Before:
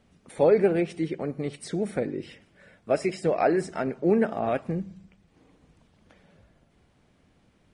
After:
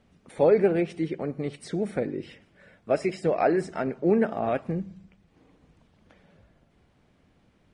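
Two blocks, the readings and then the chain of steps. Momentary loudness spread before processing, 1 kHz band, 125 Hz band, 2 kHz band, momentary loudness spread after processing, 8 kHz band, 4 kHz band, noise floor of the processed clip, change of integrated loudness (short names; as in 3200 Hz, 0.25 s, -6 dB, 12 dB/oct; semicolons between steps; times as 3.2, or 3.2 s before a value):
12 LU, 0.0 dB, 0.0 dB, -0.5 dB, 12 LU, n/a, -2.0 dB, -64 dBFS, 0.0 dB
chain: high shelf 7000 Hz -8 dB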